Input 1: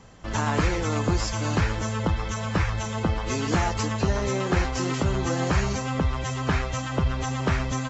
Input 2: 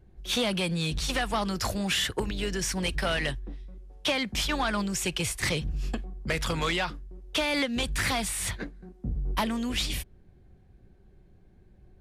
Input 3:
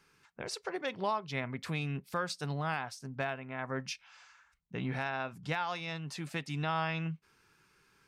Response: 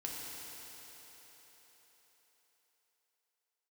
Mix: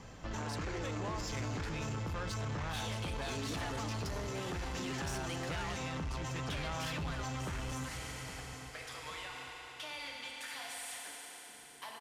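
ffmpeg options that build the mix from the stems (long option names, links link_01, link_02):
-filter_complex "[0:a]alimiter=limit=-21.5dB:level=0:latency=1,volume=-4.5dB,asplit=3[link_01][link_02][link_03];[link_02]volume=-4dB[link_04];[link_03]volume=-15.5dB[link_05];[1:a]highpass=690,acompressor=threshold=-37dB:ratio=2,adelay=2450,volume=-3.5dB,asplit=2[link_06][link_07];[link_07]volume=-4.5dB[link_08];[2:a]volume=0.5dB,asplit=2[link_09][link_10];[link_10]apad=whole_len=637368[link_11];[link_06][link_11]sidechaingate=range=-33dB:threshold=-53dB:ratio=16:detection=peak[link_12];[3:a]atrim=start_sample=2205[link_13];[link_04][link_08]amix=inputs=2:normalize=0[link_14];[link_14][link_13]afir=irnorm=-1:irlink=0[link_15];[link_05]aecho=0:1:814|1628|2442|3256|4070:1|0.39|0.152|0.0593|0.0231[link_16];[link_01][link_12][link_09][link_15][link_16]amix=inputs=5:normalize=0,asoftclip=type=tanh:threshold=-28.5dB,alimiter=level_in=10dB:limit=-24dB:level=0:latency=1:release=97,volume=-10dB"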